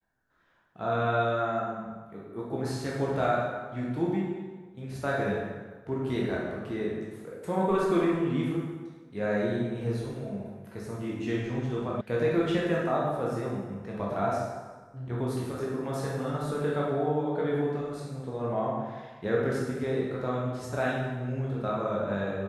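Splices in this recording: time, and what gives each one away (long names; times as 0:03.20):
0:12.01: cut off before it has died away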